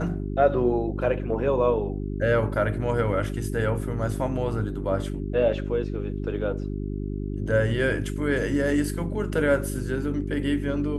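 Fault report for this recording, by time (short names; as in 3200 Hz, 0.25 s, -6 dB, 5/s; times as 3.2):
hum 50 Hz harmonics 8 -30 dBFS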